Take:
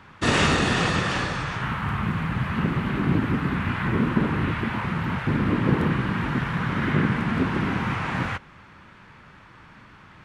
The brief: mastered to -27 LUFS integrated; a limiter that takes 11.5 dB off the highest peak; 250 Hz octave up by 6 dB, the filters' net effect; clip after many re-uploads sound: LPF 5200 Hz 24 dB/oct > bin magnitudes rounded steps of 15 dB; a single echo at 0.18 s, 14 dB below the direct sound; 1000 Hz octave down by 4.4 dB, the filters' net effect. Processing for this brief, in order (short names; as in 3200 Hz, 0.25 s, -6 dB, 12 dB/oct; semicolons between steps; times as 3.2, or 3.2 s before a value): bell 250 Hz +8 dB; bell 1000 Hz -6 dB; limiter -14 dBFS; LPF 5200 Hz 24 dB/oct; echo 0.18 s -14 dB; bin magnitudes rounded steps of 15 dB; gain -3 dB